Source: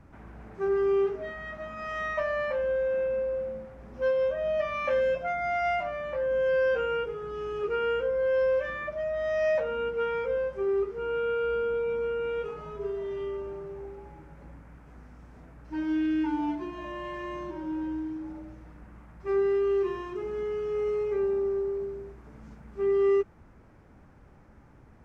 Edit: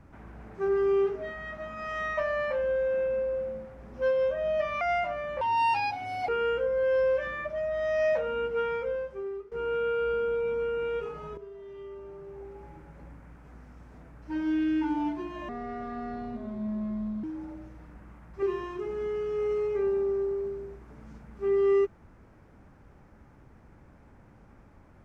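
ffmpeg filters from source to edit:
-filter_complex "[0:a]asplit=9[a][b][c][d][e][f][g][h][i];[a]atrim=end=4.812[j];[b]atrim=start=5.568:end=6.174[k];[c]atrim=start=6.17:end=7.71,asetpts=PTS-STARTPTS,asetrate=77616,aresample=44100[l];[d]atrim=start=7.706:end=10.94,asetpts=PTS-STARTPTS,afade=t=out:st=2.364:d=0.87:silence=0.133352[m];[e]atrim=start=10.94:end=12.8,asetpts=PTS-STARTPTS,afade=t=in:d=0.004:c=hsin:silence=0.133352,afade=t=out:st=1.856:d=0.004:c=hsin:silence=0.251189[n];[f]atrim=start=12.8:end=16.914,asetpts=PTS-STARTPTS,afade=t=in:d=1.3:c=qua:silence=0.251189[o];[g]atrim=start=16.91:end=18.1,asetpts=PTS-STARTPTS,asetrate=29988,aresample=44100[p];[h]atrim=start=18.096:end=19.292[q];[i]atrim=start=19.788[r];[j][k]acrossfade=d=0.004:c1=hsin:c2=hsin[s];[s][l]acrossfade=d=0.004:c1=hsin:c2=hsin[t];[m][n][o]concat=n=3:v=0:a=1[u];[t][u]acrossfade=d=0.004:c1=hsin:c2=hsin[v];[v][p]acrossfade=d=0.004:c1=hsin:c2=hsin[w];[w][q]acrossfade=d=0.004:c1=hsin:c2=hsin[x];[x][r]acrossfade=d=0.004:c1=hsin:c2=hsin"

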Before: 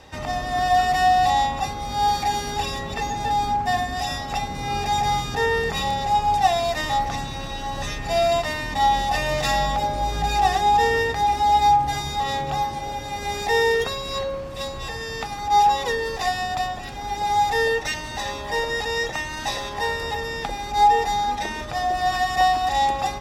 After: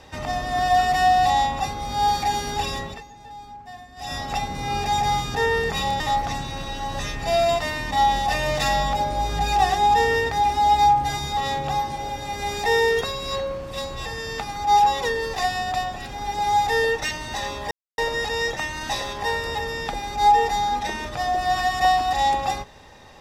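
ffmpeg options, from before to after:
-filter_complex "[0:a]asplit=5[a][b][c][d][e];[a]atrim=end=3.03,asetpts=PTS-STARTPTS,afade=t=out:st=2.8:d=0.23:silence=0.125893[f];[b]atrim=start=3.03:end=3.96,asetpts=PTS-STARTPTS,volume=-18dB[g];[c]atrim=start=3.96:end=6.002,asetpts=PTS-STARTPTS,afade=t=in:d=0.23:silence=0.125893[h];[d]atrim=start=6.828:end=18.54,asetpts=PTS-STARTPTS,afade=t=out:st=11.708:d=0.004:c=hsin,apad=pad_dur=0.27[i];[e]atrim=start=18.54,asetpts=PTS-STARTPTS,afade=t=in:d=0.004:c=hsin[j];[f][g][h]concat=n=3:v=0:a=1[k];[i][j]concat=n=2:v=0:a=1[l];[k][l]acrossfade=d=0.004:c1=hsin:c2=hsin"

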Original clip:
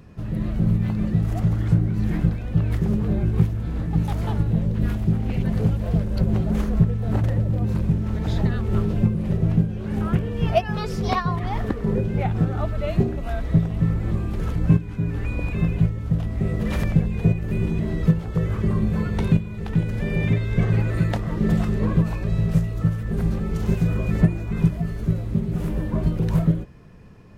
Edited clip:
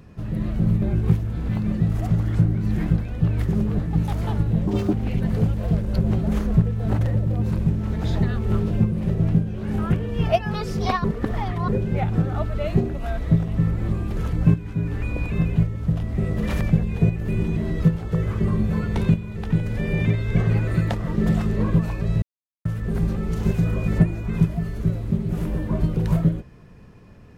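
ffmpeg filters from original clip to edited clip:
-filter_complex "[0:a]asplit=10[a][b][c][d][e][f][g][h][i][j];[a]atrim=end=0.822[k];[b]atrim=start=3.118:end=3.792[l];[c]atrim=start=0.818:end=3.122[m];[d]atrim=start=3.788:end=4.674[n];[e]atrim=start=4.67:end=5.16,asetpts=PTS-STARTPTS,asetrate=82467,aresample=44100[o];[f]atrim=start=5.156:end=11.272[p];[g]atrim=start=11.268:end=11.912,asetpts=PTS-STARTPTS,areverse[q];[h]atrim=start=11.908:end=22.45,asetpts=PTS-STARTPTS,afade=t=out:st=10.538:d=0.004:c=hsin[r];[i]atrim=start=22.45:end=22.88,asetpts=PTS-STARTPTS,volume=0[s];[j]atrim=start=22.88,asetpts=PTS-STARTPTS,afade=t=in:d=0.004:c=hsin[t];[k][l]acrossfade=d=0.004:c1=hsin:c2=hsin[u];[u][m]acrossfade=d=0.004:c1=hsin:c2=hsin[v];[v][n]acrossfade=d=0.004:c1=hsin:c2=hsin[w];[w][o]acrossfade=d=0.004:c1=hsin:c2=hsin[x];[x][p]acrossfade=d=0.004:c1=hsin:c2=hsin[y];[y][q]acrossfade=d=0.004:c1=hsin:c2=hsin[z];[r][s][t]concat=n=3:v=0:a=1[aa];[z][aa]acrossfade=d=0.004:c1=hsin:c2=hsin"

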